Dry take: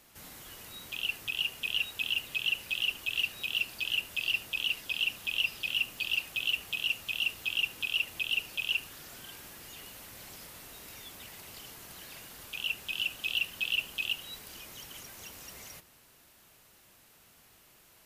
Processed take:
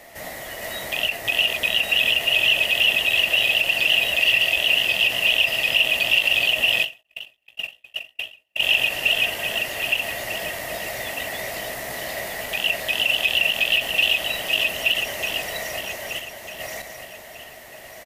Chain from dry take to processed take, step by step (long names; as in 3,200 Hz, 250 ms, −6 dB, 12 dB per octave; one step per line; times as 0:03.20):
feedback delay that plays each chunk backwards 623 ms, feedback 47%, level −0.5 dB
0:07.01–0:08.63: noise gate −26 dBFS, range −52 dB
in parallel at +1 dB: brickwall limiter −22 dBFS, peak gain reduction 8.5 dB
on the sum: double-tracking delay 16 ms −11 dB
hollow resonant body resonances 640/1,900 Hz, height 18 dB, ringing for 20 ms
every ending faded ahead of time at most 230 dB per second
level +2.5 dB